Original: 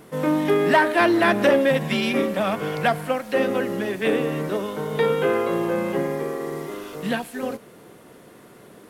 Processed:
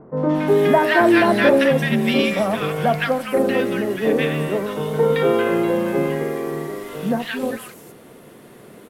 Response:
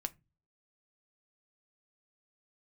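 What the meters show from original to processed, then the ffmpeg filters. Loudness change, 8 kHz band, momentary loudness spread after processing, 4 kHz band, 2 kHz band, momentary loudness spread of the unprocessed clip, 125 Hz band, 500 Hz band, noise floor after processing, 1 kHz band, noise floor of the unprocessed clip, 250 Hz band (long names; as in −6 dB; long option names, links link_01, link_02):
+3.5 dB, +2.5 dB, 11 LU, +3.0 dB, +2.5 dB, 12 LU, +5.5 dB, +3.5 dB, −44 dBFS, +2.0 dB, −48 dBFS, +4.0 dB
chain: -filter_complex "[0:a]acrossover=split=1200|5800[link_01][link_02][link_03];[link_02]adelay=170[link_04];[link_03]adelay=350[link_05];[link_01][link_04][link_05]amix=inputs=3:normalize=0,asplit=2[link_06][link_07];[1:a]atrim=start_sample=2205[link_08];[link_07][link_08]afir=irnorm=-1:irlink=0,volume=3.5dB[link_09];[link_06][link_09]amix=inputs=2:normalize=0,volume=-3.5dB"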